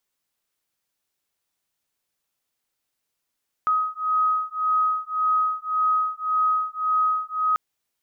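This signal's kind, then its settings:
two tones that beat 1,260 Hz, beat 1.8 Hz, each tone −23 dBFS 3.89 s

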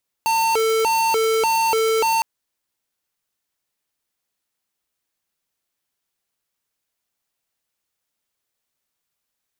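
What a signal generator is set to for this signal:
siren hi-lo 445–903 Hz 1.7 per second square −18.5 dBFS 1.96 s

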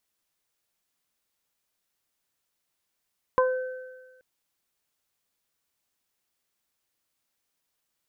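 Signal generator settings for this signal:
harmonic partials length 0.83 s, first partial 512 Hz, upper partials 2/−12 dB, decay 1.31 s, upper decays 0.22/1.63 s, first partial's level −18.5 dB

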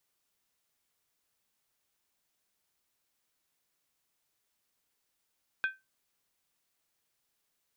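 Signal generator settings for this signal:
struck skin, lowest mode 1,550 Hz, decay 0.21 s, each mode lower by 9 dB, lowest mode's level −23.5 dB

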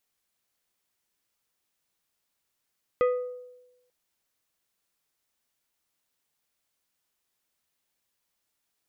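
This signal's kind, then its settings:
struck glass plate, lowest mode 497 Hz, decay 1.01 s, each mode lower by 8.5 dB, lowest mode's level −18 dB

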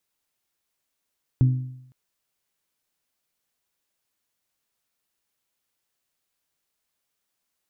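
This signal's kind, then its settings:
struck metal bell, length 0.51 s, lowest mode 128 Hz, modes 4, decay 0.76 s, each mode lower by 11.5 dB, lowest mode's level −12 dB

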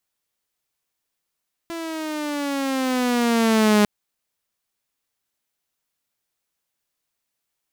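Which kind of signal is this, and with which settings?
pitch glide with a swell saw, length 2.15 s, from 337 Hz, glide −8.5 semitones, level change +15.5 dB, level −10.5 dB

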